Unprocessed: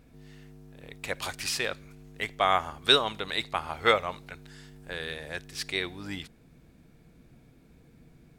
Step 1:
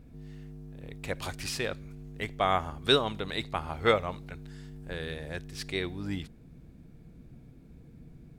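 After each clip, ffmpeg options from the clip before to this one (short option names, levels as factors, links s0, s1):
-af "lowshelf=f=440:g=12,volume=0.562"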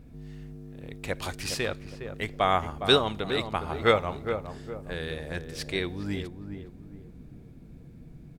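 -filter_complex "[0:a]asplit=2[s0][s1];[s1]adelay=411,lowpass=f=990:p=1,volume=0.447,asplit=2[s2][s3];[s3]adelay=411,lowpass=f=990:p=1,volume=0.42,asplit=2[s4][s5];[s5]adelay=411,lowpass=f=990:p=1,volume=0.42,asplit=2[s6][s7];[s7]adelay=411,lowpass=f=990:p=1,volume=0.42,asplit=2[s8][s9];[s9]adelay=411,lowpass=f=990:p=1,volume=0.42[s10];[s0][s2][s4][s6][s8][s10]amix=inputs=6:normalize=0,volume=1.33"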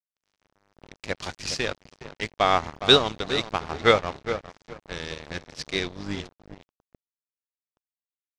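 -af "aeval=exprs='sgn(val(0))*max(abs(val(0))-0.0158,0)':c=same,lowpass=f=5900:t=q:w=1.8,volume=1.58"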